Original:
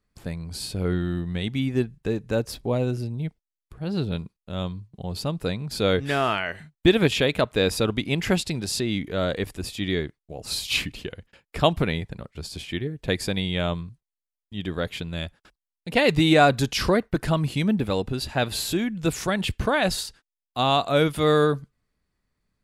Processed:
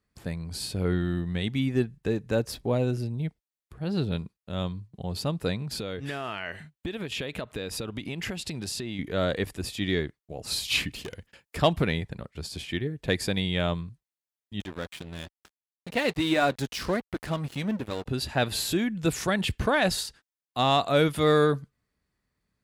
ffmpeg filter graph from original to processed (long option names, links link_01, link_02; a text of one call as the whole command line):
ffmpeg -i in.wav -filter_complex "[0:a]asettb=1/sr,asplit=3[link_01][link_02][link_03];[link_01]atrim=end=5.624[link_04];[link_02]atrim=start=5.62:end=8.99,asetpts=PTS-STARTPTS,afade=type=in:duration=0.004:curve=qsin,afade=type=out:start_time=3.366:duration=0.004:curve=qsin,acompressor=threshold=-28dB:ratio=10:attack=3.2:release=140:knee=1:detection=peak,equalizer=frequency=2800:width=6.1:gain=3[link_05];[link_03]atrim=start=8.986[link_06];[link_04][link_05]acrossfade=duration=0.004:curve1=hsin:curve2=qsin[link_07];[link_07][link_06]acrossfade=duration=0.004:curve1=qsin:curve2=hsin,asettb=1/sr,asplit=3[link_08][link_09][link_10];[link_08]atrim=end=10.924[link_11];[link_09]atrim=start=10.92:end=11.57,asetpts=PTS-STARTPTS,afade=type=in:duration=0.004:curve=qsin,afade=type=out:start_time=0.646:duration=0.004:curve=qsin,bandreject=frequency=3800:width=30,asoftclip=type=hard:threshold=-32dB,highshelf=frequency=4300:gain=7[link_12];[link_10]atrim=start=11.566[link_13];[link_11][link_12]acrossfade=duration=0.004:curve1=hsin:curve2=qsin[link_14];[link_14][link_13]acrossfade=duration=0.004:curve1=qsin:curve2=hsin,asettb=1/sr,asplit=3[link_15][link_16][link_17];[link_15]atrim=end=14.604[link_18];[link_16]atrim=start=14.6:end=18.06,asetpts=PTS-STARTPTS,afade=type=in:duration=0.004:curve=qsin,afade=type=out:start_time=3.456:duration=0.004:curve=qsin,acompressor=mode=upward:threshold=-22dB:ratio=2.5:attack=3.2:release=140:knee=2.83:detection=peak,flanger=delay=2.9:depth=2:regen=-66:speed=1.2:shape=sinusoidal,aeval=exprs='sgn(val(0))*max(abs(val(0))-0.015,0)':channel_layout=same[link_19];[link_17]atrim=start=18.056[link_20];[link_18][link_19]acrossfade=duration=0.004:curve1=hsin:curve2=qsin[link_21];[link_21][link_20]acrossfade=duration=0.004:curve1=qsin:curve2=hsin,highpass=43,equalizer=frequency=1800:width_type=o:width=0.21:gain=2.5,acontrast=47,volume=-7dB" out.wav